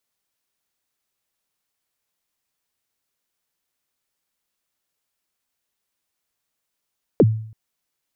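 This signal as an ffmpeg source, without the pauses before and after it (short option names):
-f lavfi -i "aevalsrc='0.447*pow(10,-3*t/0.58)*sin(2*PI*(550*0.044/log(110/550)*(exp(log(110/550)*min(t,0.044)/0.044)-1)+110*max(t-0.044,0)))':d=0.33:s=44100"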